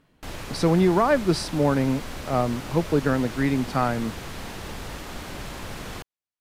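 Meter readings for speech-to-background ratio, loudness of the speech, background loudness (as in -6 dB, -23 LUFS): 13.0 dB, -23.5 LUFS, -36.5 LUFS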